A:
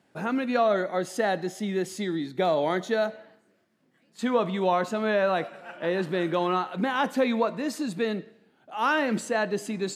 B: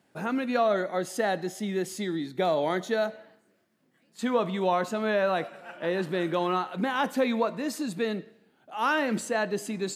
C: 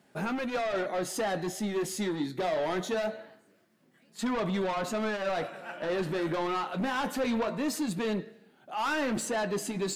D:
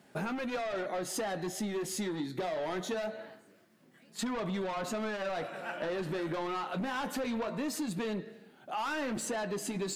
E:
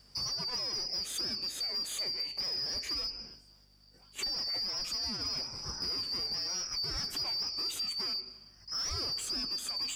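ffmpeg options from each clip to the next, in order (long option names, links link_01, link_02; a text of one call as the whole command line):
ffmpeg -i in.wav -af "highshelf=frequency=10000:gain=7.5,volume=-1.5dB" out.wav
ffmpeg -i in.wav -filter_complex "[0:a]asplit=2[link_01][link_02];[link_02]alimiter=limit=-20.5dB:level=0:latency=1:release=64,volume=2.5dB[link_03];[link_01][link_03]amix=inputs=2:normalize=0,asoftclip=type=tanh:threshold=-22dB,flanger=delay=4.8:depth=9:regen=-56:speed=0.24:shape=sinusoidal" out.wav
ffmpeg -i in.wav -af "acompressor=threshold=-36dB:ratio=5,volume=3dB" out.wav
ffmpeg -i in.wav -af "afftfilt=real='real(if(lt(b,272),68*(eq(floor(b/68),0)*1+eq(floor(b/68),1)*2+eq(floor(b/68),2)*3+eq(floor(b/68),3)*0)+mod(b,68),b),0)':imag='imag(if(lt(b,272),68*(eq(floor(b/68),0)*1+eq(floor(b/68),1)*2+eq(floor(b/68),2)*3+eq(floor(b/68),3)*0)+mod(b,68),b),0)':win_size=2048:overlap=0.75,aeval=exprs='val(0)+0.000562*(sin(2*PI*50*n/s)+sin(2*PI*2*50*n/s)/2+sin(2*PI*3*50*n/s)/3+sin(2*PI*4*50*n/s)/4+sin(2*PI*5*50*n/s)/5)':channel_layout=same,asoftclip=type=tanh:threshold=-25.5dB" out.wav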